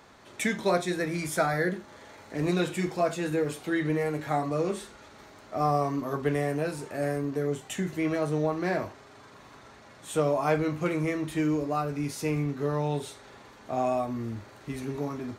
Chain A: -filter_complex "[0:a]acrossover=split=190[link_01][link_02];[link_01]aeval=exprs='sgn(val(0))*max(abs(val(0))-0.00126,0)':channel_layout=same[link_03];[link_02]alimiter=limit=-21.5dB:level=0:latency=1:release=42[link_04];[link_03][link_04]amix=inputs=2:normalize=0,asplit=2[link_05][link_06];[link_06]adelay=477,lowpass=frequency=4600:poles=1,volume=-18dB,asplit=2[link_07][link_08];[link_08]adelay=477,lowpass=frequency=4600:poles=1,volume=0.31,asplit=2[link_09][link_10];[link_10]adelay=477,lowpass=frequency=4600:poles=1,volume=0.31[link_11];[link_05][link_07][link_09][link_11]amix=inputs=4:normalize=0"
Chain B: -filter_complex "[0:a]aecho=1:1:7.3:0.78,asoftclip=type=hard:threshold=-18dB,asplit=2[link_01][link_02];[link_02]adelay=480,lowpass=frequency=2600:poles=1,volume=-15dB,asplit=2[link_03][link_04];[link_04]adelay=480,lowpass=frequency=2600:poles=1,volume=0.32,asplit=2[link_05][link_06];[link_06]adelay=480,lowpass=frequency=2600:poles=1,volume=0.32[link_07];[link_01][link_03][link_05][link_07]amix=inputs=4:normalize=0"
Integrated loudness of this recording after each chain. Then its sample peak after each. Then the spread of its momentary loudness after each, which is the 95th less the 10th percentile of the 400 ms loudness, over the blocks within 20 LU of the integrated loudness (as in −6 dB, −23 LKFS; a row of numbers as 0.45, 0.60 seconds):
−31.0, −28.0 LKFS; −18.0, −16.5 dBFS; 16, 16 LU